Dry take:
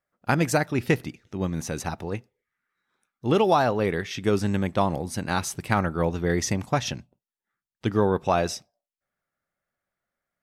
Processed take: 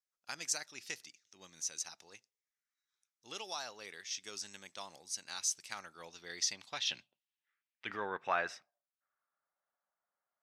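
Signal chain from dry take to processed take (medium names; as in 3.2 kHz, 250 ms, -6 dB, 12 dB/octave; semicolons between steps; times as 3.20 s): band-pass sweep 6 kHz -> 940 Hz, 5.87–9.56 s; 6.87–8.01 s: transient shaper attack -2 dB, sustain +6 dB; trim +1 dB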